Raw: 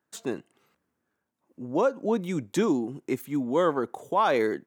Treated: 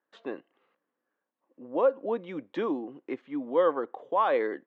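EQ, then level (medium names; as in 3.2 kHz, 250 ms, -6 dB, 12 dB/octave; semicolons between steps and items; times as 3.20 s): cabinet simulation 250–3600 Hz, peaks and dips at 290 Hz +5 dB, 520 Hz +10 dB, 760 Hz +4 dB, 1.1 kHz +7 dB, 1.8 kHz +6 dB, 3 kHz +4 dB; -8.0 dB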